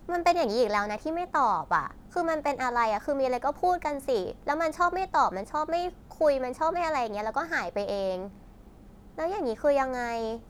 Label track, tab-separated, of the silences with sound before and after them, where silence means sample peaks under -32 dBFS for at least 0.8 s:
8.270000	9.180000	silence